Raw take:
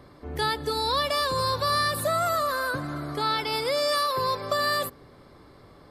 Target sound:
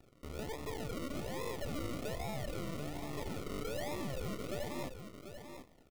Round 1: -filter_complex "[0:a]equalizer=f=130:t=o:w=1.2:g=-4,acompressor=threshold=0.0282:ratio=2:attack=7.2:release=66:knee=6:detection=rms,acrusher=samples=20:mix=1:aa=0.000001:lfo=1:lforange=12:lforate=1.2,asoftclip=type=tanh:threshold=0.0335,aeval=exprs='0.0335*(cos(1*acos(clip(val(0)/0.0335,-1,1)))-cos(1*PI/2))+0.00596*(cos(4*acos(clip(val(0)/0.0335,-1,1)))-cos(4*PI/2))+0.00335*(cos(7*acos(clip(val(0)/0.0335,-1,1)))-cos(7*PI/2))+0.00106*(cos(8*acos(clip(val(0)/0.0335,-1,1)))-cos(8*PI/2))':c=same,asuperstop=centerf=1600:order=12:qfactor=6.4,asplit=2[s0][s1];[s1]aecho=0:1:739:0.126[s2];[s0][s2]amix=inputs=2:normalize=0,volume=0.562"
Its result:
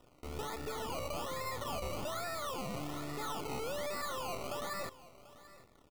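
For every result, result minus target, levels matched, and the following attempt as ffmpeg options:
decimation with a swept rate: distortion -13 dB; echo-to-direct -9.5 dB; compression: peak gain reduction -3 dB
-filter_complex "[0:a]equalizer=f=130:t=o:w=1.2:g=-4,acompressor=threshold=0.0282:ratio=2:attack=7.2:release=66:knee=6:detection=rms,acrusher=samples=41:mix=1:aa=0.000001:lfo=1:lforange=24.6:lforate=1.2,asoftclip=type=tanh:threshold=0.0335,aeval=exprs='0.0335*(cos(1*acos(clip(val(0)/0.0335,-1,1)))-cos(1*PI/2))+0.00596*(cos(4*acos(clip(val(0)/0.0335,-1,1)))-cos(4*PI/2))+0.00335*(cos(7*acos(clip(val(0)/0.0335,-1,1)))-cos(7*PI/2))+0.00106*(cos(8*acos(clip(val(0)/0.0335,-1,1)))-cos(8*PI/2))':c=same,asuperstop=centerf=1600:order=12:qfactor=6.4,asplit=2[s0][s1];[s1]aecho=0:1:739:0.126[s2];[s0][s2]amix=inputs=2:normalize=0,volume=0.562"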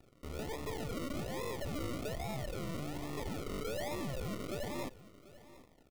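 echo-to-direct -9.5 dB; compression: peak gain reduction -3 dB
-filter_complex "[0:a]equalizer=f=130:t=o:w=1.2:g=-4,acompressor=threshold=0.0282:ratio=2:attack=7.2:release=66:knee=6:detection=rms,acrusher=samples=41:mix=1:aa=0.000001:lfo=1:lforange=24.6:lforate=1.2,asoftclip=type=tanh:threshold=0.0335,aeval=exprs='0.0335*(cos(1*acos(clip(val(0)/0.0335,-1,1)))-cos(1*PI/2))+0.00596*(cos(4*acos(clip(val(0)/0.0335,-1,1)))-cos(4*PI/2))+0.00335*(cos(7*acos(clip(val(0)/0.0335,-1,1)))-cos(7*PI/2))+0.00106*(cos(8*acos(clip(val(0)/0.0335,-1,1)))-cos(8*PI/2))':c=same,asuperstop=centerf=1600:order=12:qfactor=6.4,asplit=2[s0][s1];[s1]aecho=0:1:739:0.376[s2];[s0][s2]amix=inputs=2:normalize=0,volume=0.562"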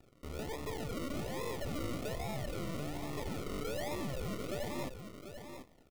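compression: peak gain reduction -3 dB
-filter_complex "[0:a]equalizer=f=130:t=o:w=1.2:g=-4,acompressor=threshold=0.0141:ratio=2:attack=7.2:release=66:knee=6:detection=rms,acrusher=samples=41:mix=1:aa=0.000001:lfo=1:lforange=24.6:lforate=1.2,asoftclip=type=tanh:threshold=0.0335,aeval=exprs='0.0335*(cos(1*acos(clip(val(0)/0.0335,-1,1)))-cos(1*PI/2))+0.00596*(cos(4*acos(clip(val(0)/0.0335,-1,1)))-cos(4*PI/2))+0.00335*(cos(7*acos(clip(val(0)/0.0335,-1,1)))-cos(7*PI/2))+0.00106*(cos(8*acos(clip(val(0)/0.0335,-1,1)))-cos(8*PI/2))':c=same,asuperstop=centerf=1600:order=12:qfactor=6.4,asplit=2[s0][s1];[s1]aecho=0:1:739:0.376[s2];[s0][s2]amix=inputs=2:normalize=0,volume=0.562"

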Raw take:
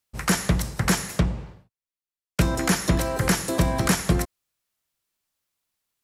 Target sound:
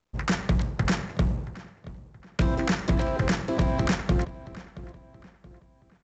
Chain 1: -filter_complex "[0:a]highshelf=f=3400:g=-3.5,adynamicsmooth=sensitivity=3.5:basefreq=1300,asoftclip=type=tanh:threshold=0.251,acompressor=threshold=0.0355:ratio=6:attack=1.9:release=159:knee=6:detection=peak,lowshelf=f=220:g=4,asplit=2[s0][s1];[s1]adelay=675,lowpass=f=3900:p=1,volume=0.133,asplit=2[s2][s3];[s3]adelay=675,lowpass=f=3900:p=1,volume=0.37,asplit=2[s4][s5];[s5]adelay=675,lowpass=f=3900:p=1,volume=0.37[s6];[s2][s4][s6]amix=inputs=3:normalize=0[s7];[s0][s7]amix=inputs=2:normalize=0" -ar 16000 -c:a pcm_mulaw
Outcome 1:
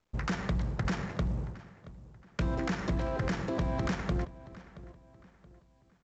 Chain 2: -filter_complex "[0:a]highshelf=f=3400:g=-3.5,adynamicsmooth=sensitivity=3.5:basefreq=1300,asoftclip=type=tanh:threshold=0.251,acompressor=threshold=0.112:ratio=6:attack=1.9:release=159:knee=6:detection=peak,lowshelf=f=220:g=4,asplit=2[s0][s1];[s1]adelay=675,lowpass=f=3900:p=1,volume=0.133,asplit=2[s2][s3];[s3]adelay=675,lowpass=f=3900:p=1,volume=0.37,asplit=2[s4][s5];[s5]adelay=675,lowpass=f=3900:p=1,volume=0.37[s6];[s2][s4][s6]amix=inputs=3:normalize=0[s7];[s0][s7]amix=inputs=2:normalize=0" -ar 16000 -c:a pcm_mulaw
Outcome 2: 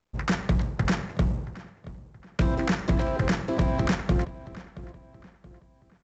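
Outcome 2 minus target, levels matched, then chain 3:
8 kHz band -3.5 dB
-filter_complex "[0:a]adynamicsmooth=sensitivity=3.5:basefreq=1300,asoftclip=type=tanh:threshold=0.251,acompressor=threshold=0.112:ratio=6:attack=1.9:release=159:knee=6:detection=peak,lowshelf=f=220:g=4,asplit=2[s0][s1];[s1]adelay=675,lowpass=f=3900:p=1,volume=0.133,asplit=2[s2][s3];[s3]adelay=675,lowpass=f=3900:p=1,volume=0.37,asplit=2[s4][s5];[s5]adelay=675,lowpass=f=3900:p=1,volume=0.37[s6];[s2][s4][s6]amix=inputs=3:normalize=0[s7];[s0][s7]amix=inputs=2:normalize=0" -ar 16000 -c:a pcm_mulaw

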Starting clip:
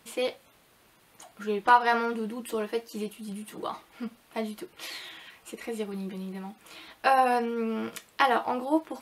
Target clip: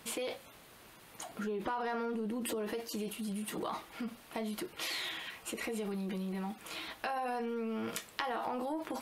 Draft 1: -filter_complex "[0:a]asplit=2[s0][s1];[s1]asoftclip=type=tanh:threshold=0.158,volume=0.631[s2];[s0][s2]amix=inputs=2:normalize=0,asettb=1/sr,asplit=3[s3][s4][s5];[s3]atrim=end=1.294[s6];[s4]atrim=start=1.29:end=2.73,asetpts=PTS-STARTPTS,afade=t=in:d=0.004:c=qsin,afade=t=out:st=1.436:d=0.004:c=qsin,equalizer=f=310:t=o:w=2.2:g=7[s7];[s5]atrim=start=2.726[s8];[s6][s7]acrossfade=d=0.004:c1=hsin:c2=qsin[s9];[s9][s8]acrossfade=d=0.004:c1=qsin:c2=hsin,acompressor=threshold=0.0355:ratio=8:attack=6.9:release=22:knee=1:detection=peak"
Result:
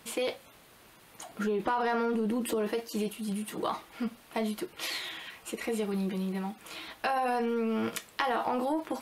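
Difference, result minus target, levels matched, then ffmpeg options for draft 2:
compression: peak gain reduction -7 dB
-filter_complex "[0:a]asplit=2[s0][s1];[s1]asoftclip=type=tanh:threshold=0.158,volume=0.631[s2];[s0][s2]amix=inputs=2:normalize=0,asettb=1/sr,asplit=3[s3][s4][s5];[s3]atrim=end=1.294[s6];[s4]atrim=start=1.29:end=2.73,asetpts=PTS-STARTPTS,afade=t=in:d=0.004:c=qsin,afade=t=out:st=1.436:d=0.004:c=qsin,equalizer=f=310:t=o:w=2.2:g=7[s7];[s5]atrim=start=2.726[s8];[s6][s7]acrossfade=d=0.004:c1=hsin:c2=qsin[s9];[s9][s8]acrossfade=d=0.004:c1=qsin:c2=hsin,acompressor=threshold=0.0141:ratio=8:attack=6.9:release=22:knee=1:detection=peak"

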